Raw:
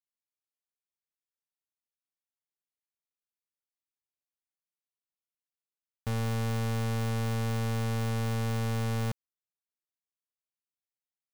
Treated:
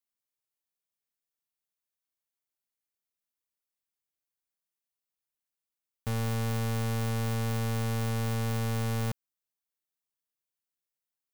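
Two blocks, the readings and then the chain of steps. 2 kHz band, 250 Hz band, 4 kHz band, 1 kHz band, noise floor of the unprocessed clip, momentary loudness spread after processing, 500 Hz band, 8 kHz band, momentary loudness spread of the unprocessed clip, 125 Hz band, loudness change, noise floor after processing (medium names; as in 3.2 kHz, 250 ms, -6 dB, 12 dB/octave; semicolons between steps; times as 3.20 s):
0.0 dB, 0.0 dB, +0.5 dB, 0.0 dB, under -85 dBFS, 4 LU, 0.0 dB, +2.5 dB, 4 LU, 0.0 dB, 0.0 dB, under -85 dBFS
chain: treble shelf 10 kHz +7 dB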